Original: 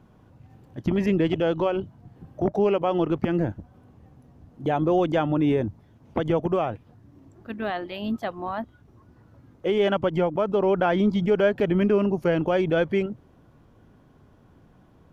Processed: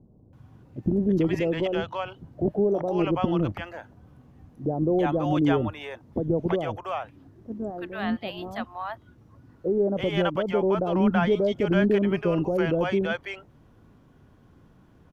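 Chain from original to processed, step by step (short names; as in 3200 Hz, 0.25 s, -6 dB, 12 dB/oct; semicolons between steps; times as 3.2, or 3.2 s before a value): bands offset in time lows, highs 0.33 s, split 640 Hz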